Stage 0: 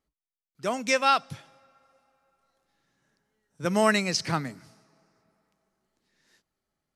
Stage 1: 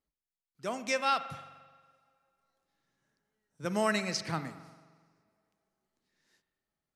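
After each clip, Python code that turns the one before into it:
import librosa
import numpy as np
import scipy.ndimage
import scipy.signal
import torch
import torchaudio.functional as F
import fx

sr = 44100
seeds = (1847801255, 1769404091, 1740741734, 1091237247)

y = fx.rev_spring(x, sr, rt60_s=1.4, pass_ms=(43,), chirp_ms=45, drr_db=11.5)
y = y * librosa.db_to_amplitude(-7.0)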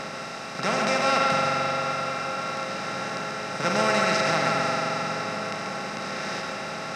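y = fx.bin_compress(x, sr, power=0.2)
y = fx.high_shelf(y, sr, hz=9300.0, db=-10.0)
y = y + 10.0 ** (-6.0 / 20.0) * np.pad(y, (int(137 * sr / 1000.0), 0))[:len(y)]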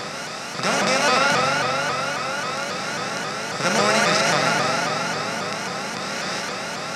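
y = fx.high_shelf(x, sr, hz=5400.0, db=9.5)
y = fx.vibrato_shape(y, sr, shape='saw_up', rate_hz=3.7, depth_cents=160.0)
y = y * librosa.db_to_amplitude(3.0)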